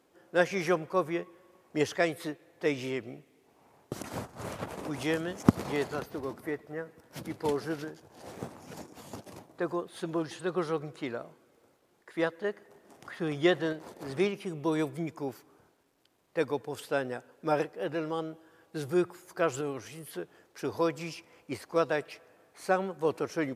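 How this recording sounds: tremolo saw up 0.51 Hz, depth 35%; a quantiser's noise floor 12-bit, dither none; MP3

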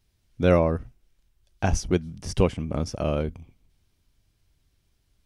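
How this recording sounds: noise floor -70 dBFS; spectral tilt -6.5 dB/octave

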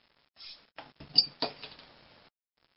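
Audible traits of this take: random-step tremolo, depth 70%; a quantiser's noise floor 10-bit, dither none; MP3

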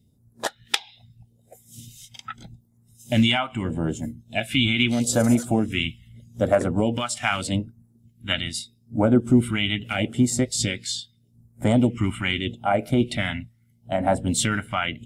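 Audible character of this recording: phasing stages 2, 0.8 Hz, lowest notch 460–2900 Hz

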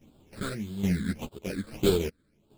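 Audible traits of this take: aliases and images of a low sample rate 1.9 kHz, jitter 20%; phasing stages 8, 1.7 Hz, lowest notch 790–1900 Hz; chopped level 1.2 Hz, depth 65%, duty 50%; a shimmering, thickened sound

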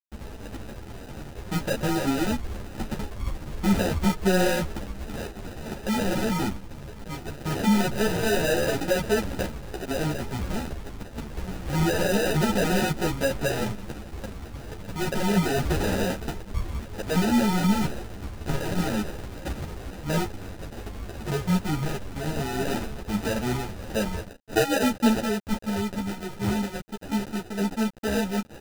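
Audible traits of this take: a quantiser's noise floor 6-bit, dither none; phasing stages 8, 0.26 Hz, lowest notch 560–1400 Hz; aliases and images of a low sample rate 1.1 kHz, jitter 0%; a shimmering, thickened sound

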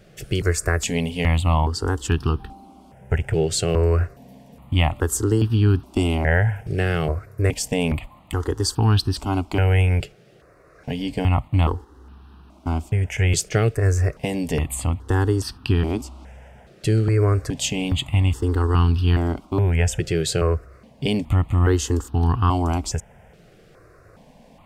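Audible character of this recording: notches that jump at a steady rate 2.4 Hz 260–2100 Hz

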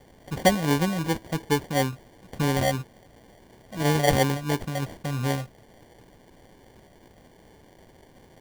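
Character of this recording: a quantiser's noise floor 10-bit, dither triangular; phasing stages 6, 2.9 Hz, lowest notch 370–1300 Hz; aliases and images of a low sample rate 1.3 kHz, jitter 0%

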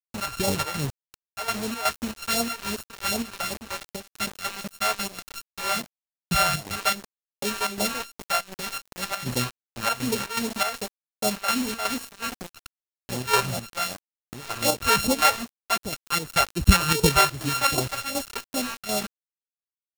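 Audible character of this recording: a buzz of ramps at a fixed pitch in blocks of 32 samples; phasing stages 2, 2.6 Hz, lowest notch 190–1700 Hz; a quantiser's noise floor 6-bit, dither none; chopped level 2.7 Hz, depth 60%, duty 70%

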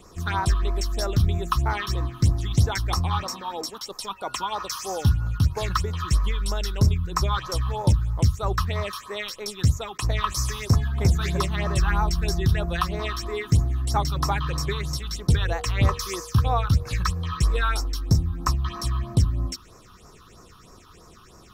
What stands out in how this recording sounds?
phasing stages 6, 3.1 Hz, lowest notch 540–3200 Hz

